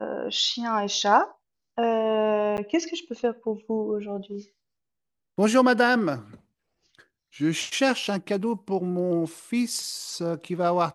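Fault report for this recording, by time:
2.57–2.58 gap 9.6 ms

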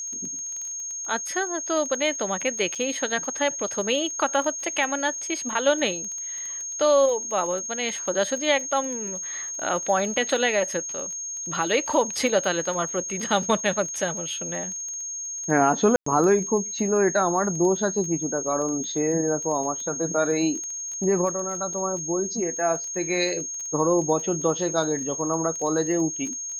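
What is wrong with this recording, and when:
crackle 17/s -31 dBFS
tone 6500 Hz -30 dBFS
2.75–2.76 gap 6.3 ms
15.96–16.06 gap 0.104 s

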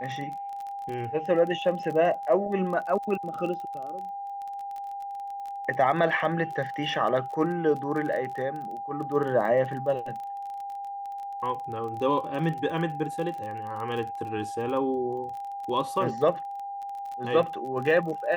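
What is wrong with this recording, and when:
crackle 27/s -34 dBFS
tone 800 Hz -33 dBFS

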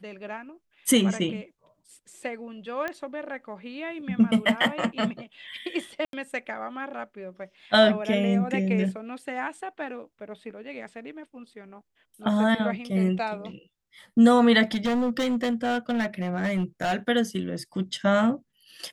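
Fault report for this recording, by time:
2.88 pop -18 dBFS
6.05–6.13 gap 82 ms
14.71–16.94 clipped -21.5 dBFS

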